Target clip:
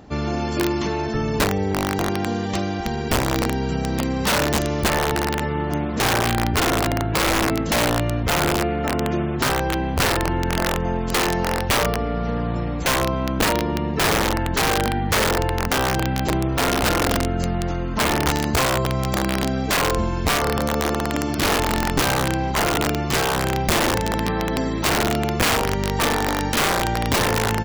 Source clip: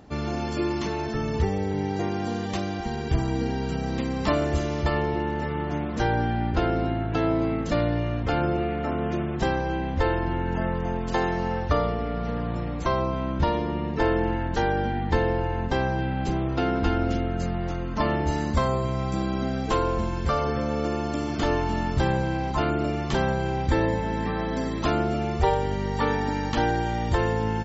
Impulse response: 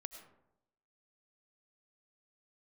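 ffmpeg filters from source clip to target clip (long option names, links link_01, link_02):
-af "aeval=exprs='0.355*(cos(1*acos(clip(val(0)/0.355,-1,1)))-cos(1*PI/2))+0.0158*(cos(2*acos(clip(val(0)/0.355,-1,1)))-cos(2*PI/2))+0.0708*(cos(3*acos(clip(val(0)/0.355,-1,1)))-cos(3*PI/2))+0.0178*(cos(5*acos(clip(val(0)/0.355,-1,1)))-cos(5*PI/2))':channel_layout=same,aeval=exprs='(mod(11.9*val(0)+1,2)-1)/11.9':channel_layout=same,volume=8.5dB"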